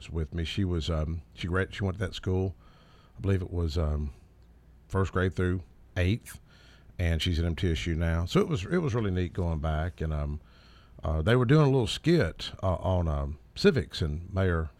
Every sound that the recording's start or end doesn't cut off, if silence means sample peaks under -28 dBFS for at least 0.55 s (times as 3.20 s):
3.24–4.08 s
4.93–6.16 s
7.00–10.32 s